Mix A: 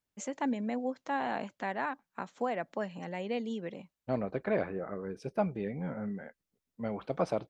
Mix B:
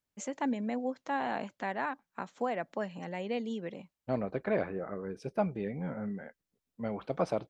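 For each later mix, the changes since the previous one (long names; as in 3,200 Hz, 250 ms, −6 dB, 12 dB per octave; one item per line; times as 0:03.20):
nothing changed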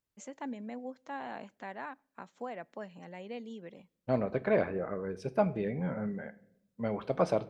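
first voice −8.0 dB
reverb: on, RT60 0.65 s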